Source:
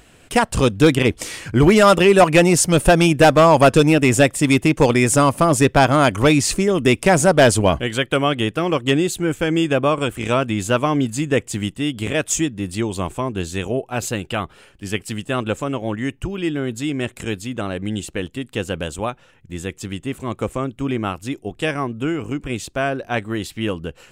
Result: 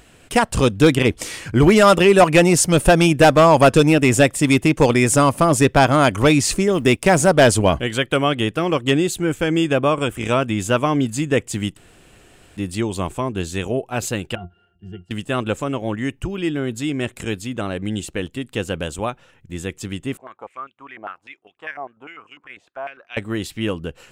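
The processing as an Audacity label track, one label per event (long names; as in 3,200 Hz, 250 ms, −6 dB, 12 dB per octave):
6.720000	7.310000	mu-law and A-law mismatch coded by A
9.840000	10.890000	notch filter 4,200 Hz, Q 8.9
11.770000	12.570000	fill with room tone
14.350000	15.110000	resonances in every octave F, decay 0.13 s
20.170000	23.170000	band-pass on a step sequencer 10 Hz 710–2,700 Hz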